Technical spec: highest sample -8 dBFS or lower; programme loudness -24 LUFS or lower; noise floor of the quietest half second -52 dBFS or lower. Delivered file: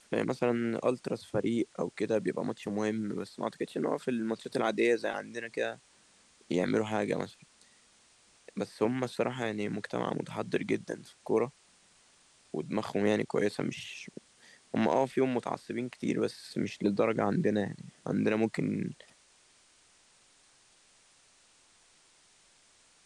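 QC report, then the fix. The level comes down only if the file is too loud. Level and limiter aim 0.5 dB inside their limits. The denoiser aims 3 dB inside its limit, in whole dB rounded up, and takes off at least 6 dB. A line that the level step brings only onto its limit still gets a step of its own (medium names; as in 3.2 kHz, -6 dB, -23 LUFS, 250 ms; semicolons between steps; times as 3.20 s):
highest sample -14.5 dBFS: pass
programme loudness -32.5 LUFS: pass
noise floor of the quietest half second -64 dBFS: pass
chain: none needed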